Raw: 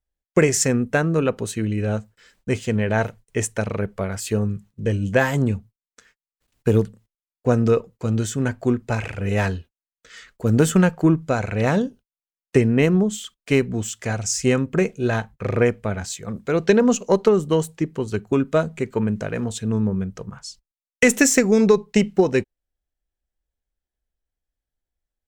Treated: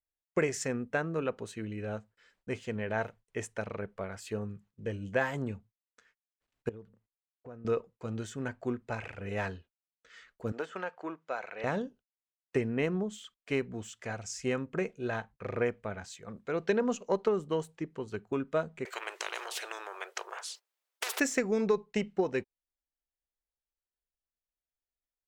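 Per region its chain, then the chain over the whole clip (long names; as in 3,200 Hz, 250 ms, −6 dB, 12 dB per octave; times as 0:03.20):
0:06.69–0:07.65: low-pass filter 1,900 Hz 6 dB per octave + downward compressor 3 to 1, threshold −35 dBFS
0:10.52–0:11.64: band-pass filter 570–5,600 Hz + de-essing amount 90%
0:18.85–0:21.20: linear-phase brick-wall high-pass 350 Hz + high-shelf EQ 11,000 Hz +8.5 dB + every bin compressed towards the loudest bin 10 to 1
whole clip: low-pass filter 2,400 Hz 6 dB per octave; low-shelf EQ 330 Hz −10 dB; level −8 dB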